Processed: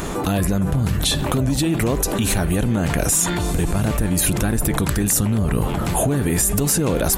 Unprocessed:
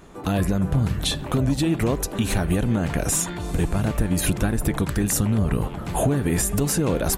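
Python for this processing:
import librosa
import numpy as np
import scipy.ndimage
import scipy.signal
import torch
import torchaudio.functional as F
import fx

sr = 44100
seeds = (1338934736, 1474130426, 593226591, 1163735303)

y = fx.high_shelf(x, sr, hz=5800.0, db=7.5)
y = fx.env_flatten(y, sr, amount_pct=70)
y = y * 10.0 ** (-1.0 / 20.0)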